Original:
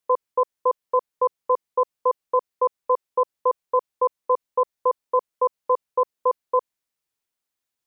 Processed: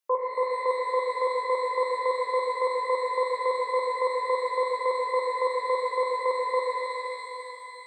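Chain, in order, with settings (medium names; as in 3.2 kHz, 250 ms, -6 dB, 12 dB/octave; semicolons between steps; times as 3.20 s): high-pass 470 Hz 6 dB/octave; band-stop 1 kHz, Q 27; pitch-shifted reverb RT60 3 s, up +12 st, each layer -8 dB, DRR -2.5 dB; trim -2.5 dB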